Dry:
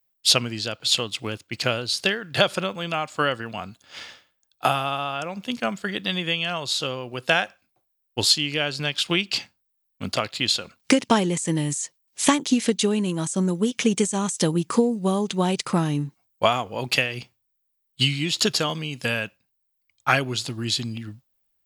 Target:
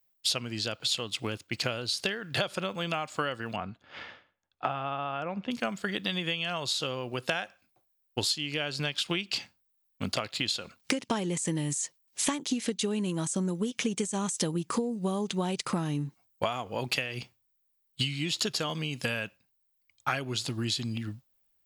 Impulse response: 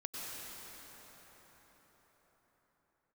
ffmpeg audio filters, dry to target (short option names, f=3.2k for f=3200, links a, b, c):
-filter_complex "[0:a]acompressor=threshold=-28dB:ratio=4,asettb=1/sr,asplit=3[a][b][c];[a]atrim=end=3.564[d];[b]atrim=start=3.56:end=5.51,asetpts=PTS-STARTPTS,afade=t=in:d=0.004:c=qsin,afade=t=out:st=1.946:d=0.004:c=qsin,lowpass=2.2k[e];[c]atrim=start=5.506[f];[d][e]acrossfade=d=0.004:c1=hsin:c2=qsin[g];[g][f]acrossfade=d=0.004:c1=qsin:c2=hsin"